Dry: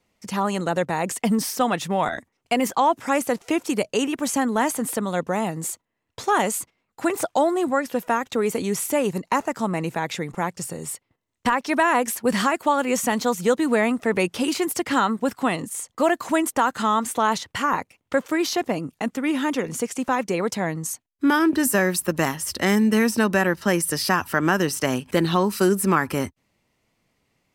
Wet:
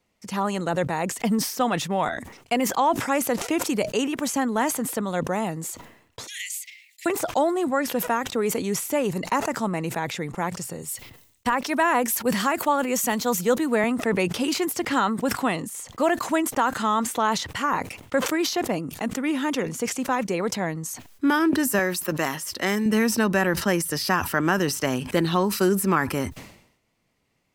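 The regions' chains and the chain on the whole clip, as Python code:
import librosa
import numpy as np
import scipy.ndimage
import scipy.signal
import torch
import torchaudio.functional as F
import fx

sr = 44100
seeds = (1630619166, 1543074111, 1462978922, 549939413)

y = fx.chain(x, sr, fx.steep_highpass(hz=1900.0, slope=96),
    fx.band_squash(depth_pct=40), at=(6.27, 7.06))
y = fx.chain(y, sr, fx.high_shelf(hz=12000.0, db=11.5),
    fx.band_widen(depth_pct=40), at=(10.82, 13.84))
y = fx.chain(y, sr, fx.highpass(hz=300.0, slope=6),
    fx.notch(hz=850.0, q=22.0), at=(21.79, 22.86))
y = fx.dynamic_eq(y, sr, hz=9300.0, q=2.8, threshold_db=-43.0, ratio=4.0, max_db=-5)
y = fx.sustainer(y, sr, db_per_s=81.0)
y = F.gain(torch.from_numpy(y), -2.0).numpy()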